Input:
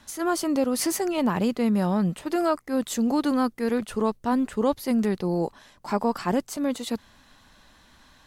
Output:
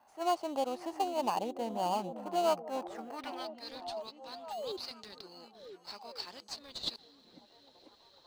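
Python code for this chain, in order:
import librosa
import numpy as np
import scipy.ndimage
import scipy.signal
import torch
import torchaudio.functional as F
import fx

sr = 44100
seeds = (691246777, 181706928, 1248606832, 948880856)

p1 = fx.filter_sweep_bandpass(x, sr, from_hz=780.0, to_hz=4200.0, start_s=2.71, end_s=3.55, q=4.6)
p2 = fx.spec_paint(p1, sr, seeds[0], shape='fall', start_s=4.5, length_s=0.27, low_hz=350.0, high_hz=880.0, level_db=-42.0)
p3 = fx.sample_hold(p2, sr, seeds[1], rate_hz=3600.0, jitter_pct=0)
p4 = p2 + (p3 * librosa.db_to_amplitude(-6.5))
p5 = fx.dynamic_eq(p4, sr, hz=4500.0, q=0.85, threshold_db=-53.0, ratio=4.0, max_db=5)
p6 = p5 + fx.echo_stepped(p5, sr, ms=495, hz=230.0, octaves=0.7, feedback_pct=70, wet_db=-6, dry=0)
y = fx.doppler_dist(p6, sr, depth_ms=0.13)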